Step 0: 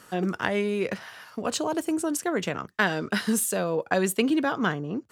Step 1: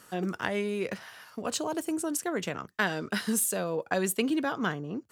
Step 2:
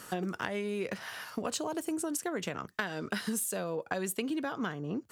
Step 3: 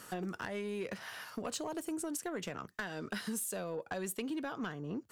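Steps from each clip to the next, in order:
high-shelf EQ 6,700 Hz +5.5 dB; level −4.5 dB
downward compressor 6 to 1, threshold −38 dBFS, peak gain reduction 15.5 dB; level +6.5 dB
soft clipping −24.5 dBFS, distortion −18 dB; level −3.5 dB

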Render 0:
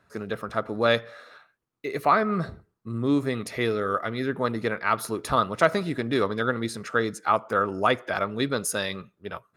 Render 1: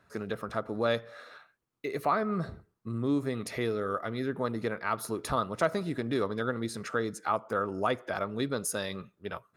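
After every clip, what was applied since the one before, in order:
dynamic equaliser 2,400 Hz, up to −5 dB, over −38 dBFS, Q 0.72
in parallel at +1 dB: downward compressor, threshold −32 dBFS, peak gain reduction 16 dB
on the sum: level −7.5 dB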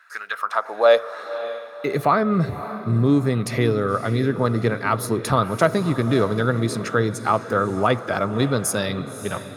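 high-pass filter sweep 1,500 Hz → 110 Hz, 0:00.25–0:02.11
feedback delay with all-pass diffusion 568 ms, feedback 44%, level −12.5 dB
level +9 dB

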